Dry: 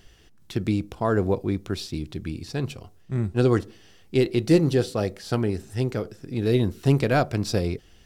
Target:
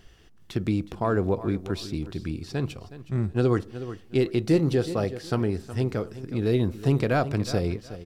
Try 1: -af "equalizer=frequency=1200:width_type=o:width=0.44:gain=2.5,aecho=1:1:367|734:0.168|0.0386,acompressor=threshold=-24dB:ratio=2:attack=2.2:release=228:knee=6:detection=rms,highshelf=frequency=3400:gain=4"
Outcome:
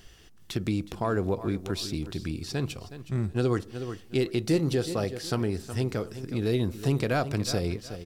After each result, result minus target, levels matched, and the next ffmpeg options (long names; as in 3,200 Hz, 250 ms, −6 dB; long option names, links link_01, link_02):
8,000 Hz band +8.0 dB; downward compressor: peak gain reduction +3.5 dB
-af "equalizer=frequency=1200:width_type=o:width=0.44:gain=2.5,aecho=1:1:367|734:0.168|0.0386,acompressor=threshold=-24dB:ratio=2:attack=2.2:release=228:knee=6:detection=rms,highshelf=frequency=3400:gain=-4.5"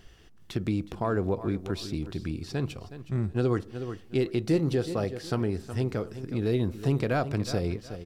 downward compressor: peak gain reduction +3.5 dB
-af "equalizer=frequency=1200:width_type=o:width=0.44:gain=2.5,aecho=1:1:367|734:0.168|0.0386,acompressor=threshold=-16.5dB:ratio=2:attack=2.2:release=228:knee=6:detection=rms,highshelf=frequency=3400:gain=-4.5"